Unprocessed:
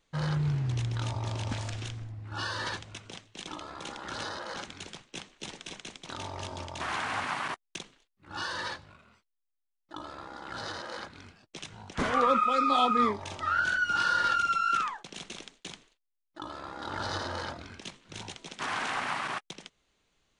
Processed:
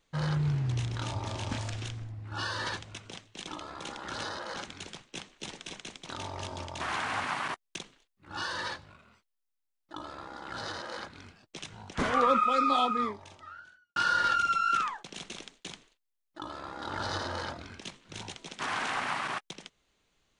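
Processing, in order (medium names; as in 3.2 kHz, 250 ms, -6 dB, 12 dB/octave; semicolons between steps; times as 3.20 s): 0.78–1.58 s: doubling 31 ms -6 dB; 12.67–13.96 s: fade out quadratic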